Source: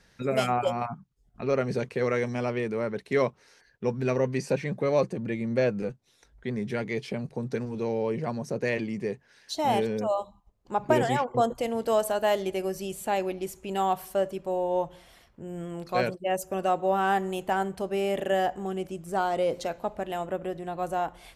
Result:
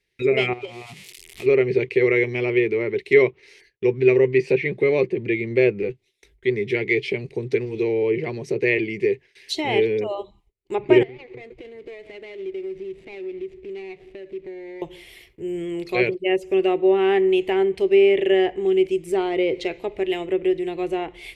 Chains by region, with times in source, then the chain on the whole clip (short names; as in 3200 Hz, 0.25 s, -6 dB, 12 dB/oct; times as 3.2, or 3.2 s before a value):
0.53–1.46 switching spikes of -27 dBFS + air absorption 58 m + compressor, threshold -36 dBFS
11.03–14.82 median filter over 41 samples + compressor 12:1, threshold -41 dBFS + air absorption 110 m
whole clip: treble ducked by the level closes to 2700 Hz, closed at -24.5 dBFS; gate with hold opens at -48 dBFS; EQ curve 120 Hz 0 dB, 240 Hz -8 dB, 380 Hz +13 dB, 550 Hz -5 dB, 1500 Hz -9 dB, 2100 Hz +13 dB, 6100 Hz 0 dB, 11000 Hz +7 dB; gain +3.5 dB